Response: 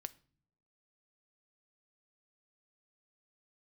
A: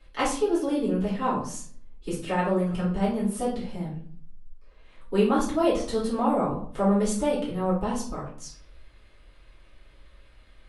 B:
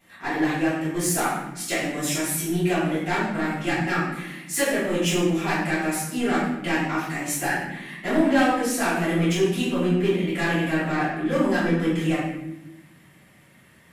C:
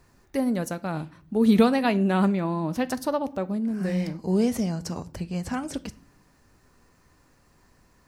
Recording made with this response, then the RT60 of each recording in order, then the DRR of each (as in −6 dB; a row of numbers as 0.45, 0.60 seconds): C; 0.50 s, 0.95 s, non-exponential decay; −9.0, −13.5, 13.5 decibels